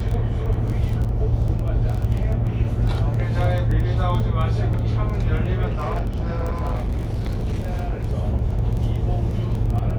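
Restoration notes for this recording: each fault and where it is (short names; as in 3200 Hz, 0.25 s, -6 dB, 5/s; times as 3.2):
crackle 11/s -24 dBFS
5.65–8.03 clipped -19.5 dBFS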